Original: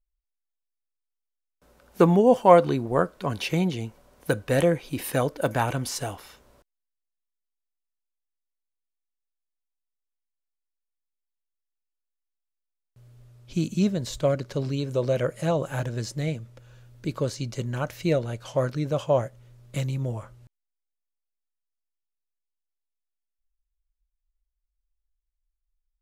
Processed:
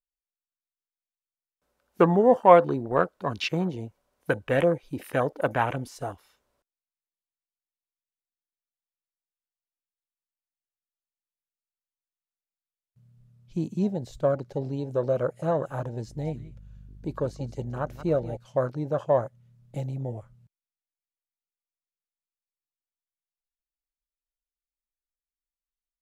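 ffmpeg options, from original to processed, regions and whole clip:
-filter_complex "[0:a]asettb=1/sr,asplit=3[s0][s1][s2];[s0]atrim=end=16.074[s3];[s1]atrim=start=16.07:end=18.37,asetpts=PTS-STARTPTS,afade=t=in:d=0.004:c=qsin,afade=t=out:st=2.296:d=0.004:c=qsin,aeval=exprs='val(0)+0.00794*(sin(2*PI*50*n/s)+sin(2*PI*2*50*n/s)/2+sin(2*PI*3*50*n/s)/3+sin(2*PI*4*50*n/s)/4+sin(2*PI*5*50*n/s)/5)':c=same,aecho=1:1:179:0.2,atrim=end_sample=101430[s4];[s2]atrim=start=18.366[s5];[s3][s4]acrossfade=d=0.004:c1=hsin:c2=qsin[s6];[s6][s5]acrossfade=d=0.004:c1=qsin:c2=hsin,afwtdn=0.0224,lowshelf=f=380:g=-7,volume=1.26"

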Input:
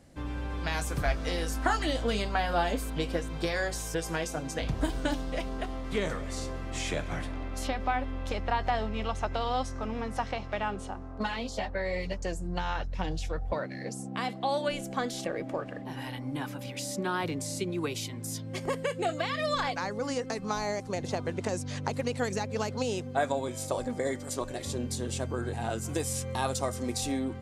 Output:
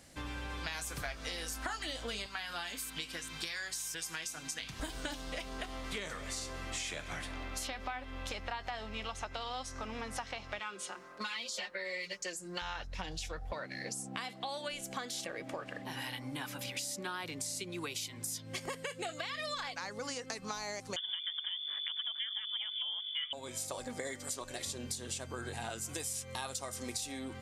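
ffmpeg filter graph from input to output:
-filter_complex "[0:a]asettb=1/sr,asplit=3[s0][s1][s2];[s0]atrim=end=2.264[s3];[s1]atrim=start=2.26:end=4.8,asetpts=PTS-STARTPTS,afade=t=in:d=0.004:c=qsin,afade=t=out:st=2.536:d=0.004:c=qsin,highpass=f=220:p=1,equalizer=f=570:w=0.97:g=-12[s4];[s2]atrim=start=4.796[s5];[s3][s4]acrossfade=d=0.004:c1=hsin:c2=qsin[s6];[s6][s5]acrossfade=d=0.004:c1=qsin:c2=hsin,asettb=1/sr,asplit=3[s7][s8][s9];[s7]atrim=end=10.594[s10];[s8]atrim=start=10.59:end=12.62,asetpts=PTS-STARTPTS,afade=t=in:d=0.004:c=qsin,afade=t=out:st=2.026:d=0.004:c=qsin,highpass=330,equalizer=f=760:w=2.1:g=-11.5,aecho=1:1:5.6:0.85,atrim=end_sample=89523[s11];[s9]atrim=start=12.616[s12];[s10][s11]acrossfade=d=0.004:c1=hsin:c2=qsin[s13];[s13][s12]acrossfade=d=0.004:c1=qsin:c2=hsin,asettb=1/sr,asplit=3[s14][s15][s16];[s14]atrim=end=20.964[s17];[s15]atrim=start=20.96:end=23.33,asetpts=PTS-STARTPTS,afade=t=in:d=0.004:c=qsin,afade=t=out:st=2.366:d=0.004:c=qsin,asuperstop=centerf=920:order=4:qfactor=1.9,lowpass=f=3100:t=q:w=0.5098,lowpass=f=3100:t=q:w=0.6013,lowpass=f=3100:t=q:w=0.9,lowpass=f=3100:t=q:w=2.563,afreqshift=-3600[s18];[s16]atrim=start=23.326[s19];[s17][s18]acrossfade=d=0.004:c1=hsin:c2=qsin[s20];[s20][s19]acrossfade=d=0.004:c1=qsin:c2=hsin,tiltshelf=f=1100:g=-7,acompressor=threshold=0.0112:ratio=5,volume=1.19"

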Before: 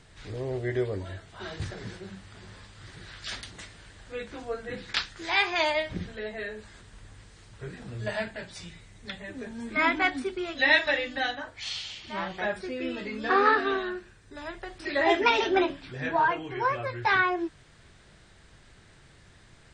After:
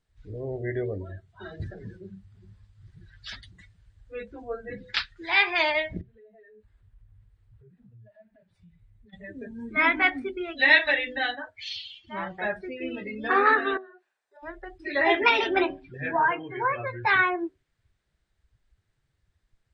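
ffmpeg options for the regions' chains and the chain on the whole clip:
-filter_complex "[0:a]asettb=1/sr,asplit=3[s0][s1][s2];[s0]atrim=end=6.014[s3];[s1]atrim=start=6.01:end=9.13,asetpts=PTS-STARTPTS,afade=t=in:d=0.004:c=qsin,afade=t=out:st=3.116:d=0.004:c=qsin,equalizer=f=6200:t=o:w=1.3:g=-13,acompressor=threshold=0.00501:ratio=10:attack=3.2:release=140:knee=1:detection=peak[s4];[s2]atrim=start=9.126[s5];[s3][s4]acrossfade=d=0.004:c1=hsin:c2=qsin[s6];[s6][s5]acrossfade=d=0.004:c1=qsin:c2=hsin,asettb=1/sr,asplit=3[s7][s8][s9];[s7]atrim=end=13.774[s10];[s8]atrim=start=13.77:end=14.43,asetpts=PTS-STARTPTS,afade=t=in:d=0.004:c=qsin,afade=t=out:st=0.656:d=0.004:c=qsin,highpass=f=700:t=q:w=2.7,acompressor=threshold=0.00631:ratio=10:attack=3.2:release=140:knee=1:detection=peak[s11];[s9]atrim=start=14.426[s12];[s10][s11]acrossfade=d=0.004:c1=hsin:c2=qsin[s13];[s13][s12]acrossfade=d=0.004:c1=qsin:c2=hsin,bandreject=f=126.5:t=h:w=4,bandreject=f=253:t=h:w=4,bandreject=f=379.5:t=h:w=4,bandreject=f=506:t=h:w=4,bandreject=f=632.5:t=h:w=4,bandreject=f=759:t=h:w=4,afftdn=nr=24:nf=-37,adynamicequalizer=threshold=0.0141:dfrequency=2200:dqfactor=1.5:tfrequency=2200:tqfactor=1.5:attack=5:release=100:ratio=0.375:range=2.5:mode=boostabove:tftype=bell"

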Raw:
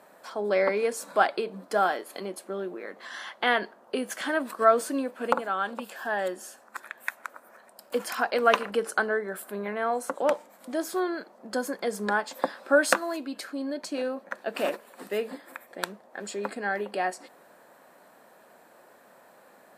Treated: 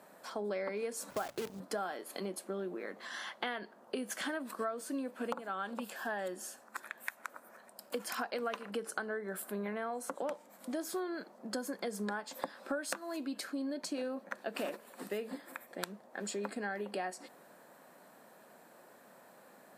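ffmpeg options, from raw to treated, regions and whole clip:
-filter_complex "[0:a]asettb=1/sr,asplit=3[s0][s1][s2];[s0]atrim=end=1.104[s3];[s1]atrim=start=1.1:end=1.6,asetpts=PTS-STARTPTS,afade=t=in:d=0.004:c=qsin,afade=t=out:st=0.496:d=0.004:c=qsin,highshelf=f=2200:g=-9.5,aeval=exprs='val(0)+0.00178*(sin(2*PI*50*n/s)+sin(2*PI*2*50*n/s)/2+sin(2*PI*3*50*n/s)/3+sin(2*PI*4*50*n/s)/4+sin(2*PI*5*50*n/s)/5)':c=same,acrusher=bits=6:dc=4:mix=0:aa=0.000001[s4];[s2]atrim=start=1.596[s5];[s3][s4]acrossfade=d=0.004:c1=hsin:c2=qsin[s6];[s6][s5]acrossfade=d=0.004:c1=qsin:c2=hsin,highpass=140,bass=f=250:g=8,treble=f=4000:g=3,acompressor=threshold=0.0316:ratio=8,volume=0.631"

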